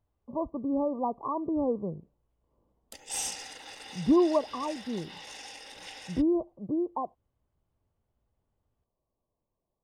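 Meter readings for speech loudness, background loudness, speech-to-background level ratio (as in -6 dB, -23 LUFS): -30.0 LUFS, -40.0 LUFS, 10.0 dB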